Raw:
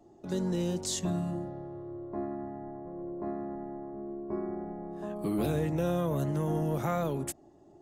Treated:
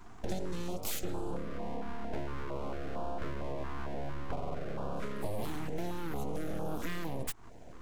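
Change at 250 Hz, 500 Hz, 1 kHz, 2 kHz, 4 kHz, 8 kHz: -8.0 dB, -5.5 dB, -2.0 dB, +2.5 dB, -3.5 dB, -6.0 dB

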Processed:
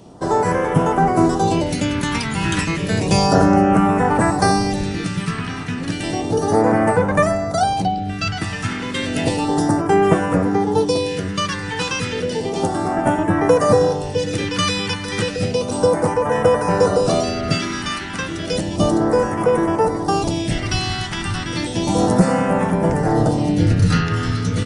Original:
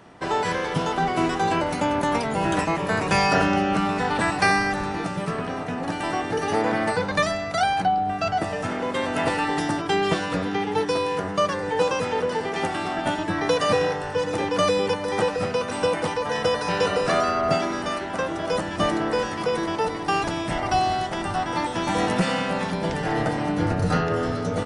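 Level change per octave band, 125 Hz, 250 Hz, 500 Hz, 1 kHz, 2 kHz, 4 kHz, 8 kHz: +10.0 dB, +8.0 dB, +5.5 dB, +3.0 dB, +1.0 dB, +4.5 dB, +7.5 dB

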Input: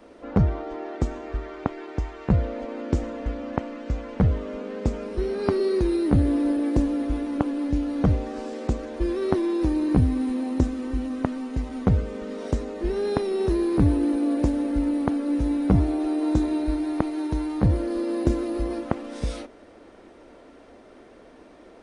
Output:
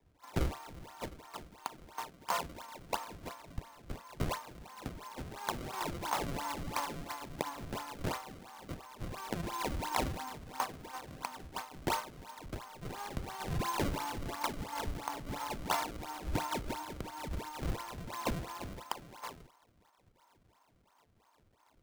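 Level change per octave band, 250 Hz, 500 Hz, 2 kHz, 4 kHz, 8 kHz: -21.0 dB, -16.0 dB, -2.5 dB, +0.5 dB, no reading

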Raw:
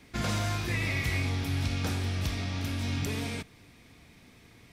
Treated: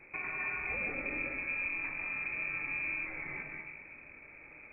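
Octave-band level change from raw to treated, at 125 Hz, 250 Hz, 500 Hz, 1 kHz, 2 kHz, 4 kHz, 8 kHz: -25.5 dB, -14.5 dB, -8.0 dB, -7.0 dB, +2.5 dB, under -40 dB, under -40 dB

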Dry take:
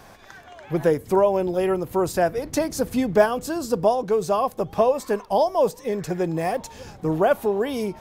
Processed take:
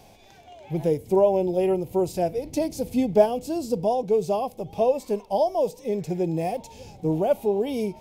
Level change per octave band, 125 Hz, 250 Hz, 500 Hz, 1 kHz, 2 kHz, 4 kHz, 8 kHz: -0.5 dB, -1.0 dB, -1.5 dB, -4.5 dB, -12.5 dB, -5.0 dB, -6.5 dB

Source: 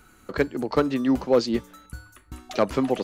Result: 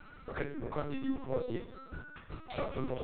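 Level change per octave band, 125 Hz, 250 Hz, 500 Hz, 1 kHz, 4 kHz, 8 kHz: -7.0 dB, -14.5 dB, -14.5 dB, -12.5 dB, -16.0 dB, under -35 dB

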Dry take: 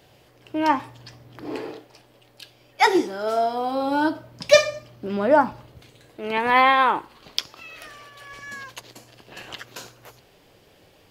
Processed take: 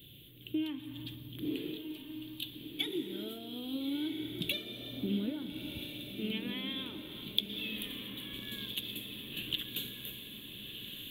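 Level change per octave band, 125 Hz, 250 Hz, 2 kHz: -2.5 dB, -7.5 dB, -19.0 dB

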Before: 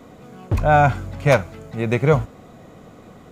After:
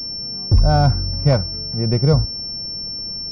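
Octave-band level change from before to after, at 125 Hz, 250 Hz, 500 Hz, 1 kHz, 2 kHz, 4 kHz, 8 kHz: +5.0 dB, +2.5 dB, -3.5 dB, -5.5 dB, -11.0 dB, +18.0 dB, no reading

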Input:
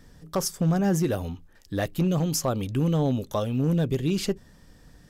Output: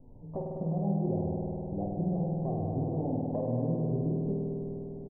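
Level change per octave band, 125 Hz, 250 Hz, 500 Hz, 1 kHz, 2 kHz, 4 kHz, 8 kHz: -5.5 dB, -5.5 dB, -5.0 dB, -6.0 dB, under -40 dB, under -40 dB, under -40 dB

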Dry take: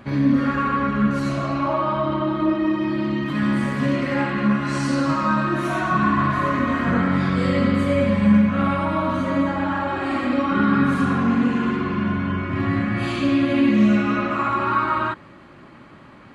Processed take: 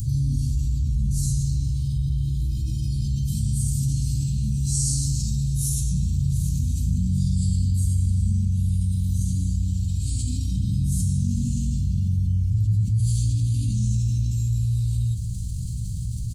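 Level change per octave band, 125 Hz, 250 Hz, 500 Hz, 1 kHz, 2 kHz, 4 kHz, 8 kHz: +6.0 dB, -12.5 dB, under -35 dB, under -40 dB, under -35 dB, -5.0 dB, no reading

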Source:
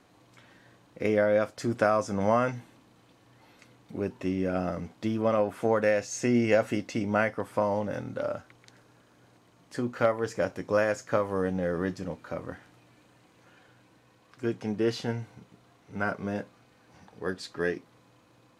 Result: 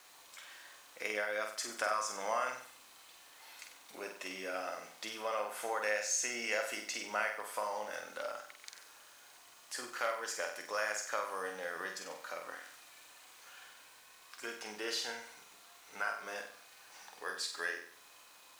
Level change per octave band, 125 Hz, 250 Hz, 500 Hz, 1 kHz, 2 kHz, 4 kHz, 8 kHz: under -30 dB, -23.0 dB, -13.5 dB, -6.0 dB, -2.5 dB, +2.5 dB, +5.0 dB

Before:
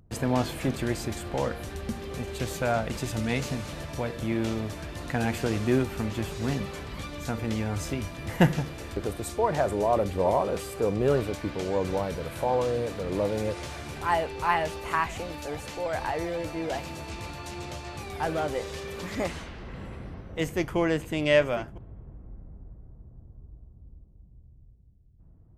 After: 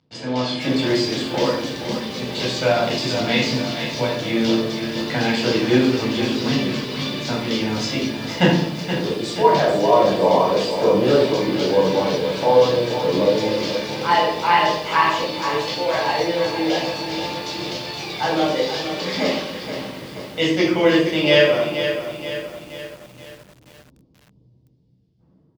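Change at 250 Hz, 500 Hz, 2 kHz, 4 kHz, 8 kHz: +9.5 dB, +10.0 dB, +10.0 dB, +16.5 dB, +6.0 dB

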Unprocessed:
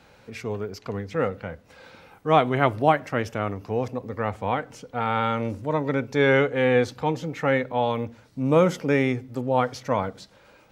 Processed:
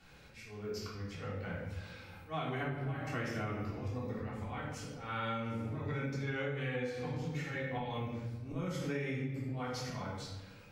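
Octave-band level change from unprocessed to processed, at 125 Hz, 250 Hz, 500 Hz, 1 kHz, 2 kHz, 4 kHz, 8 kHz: -8.5 dB, -13.0 dB, -18.0 dB, -17.5 dB, -13.0 dB, -10.5 dB, no reading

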